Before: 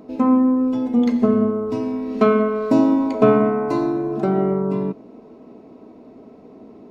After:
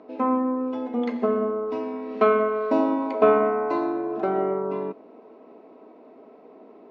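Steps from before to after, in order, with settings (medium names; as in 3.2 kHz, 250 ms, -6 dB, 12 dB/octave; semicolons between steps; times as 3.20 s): band-pass 430–2800 Hz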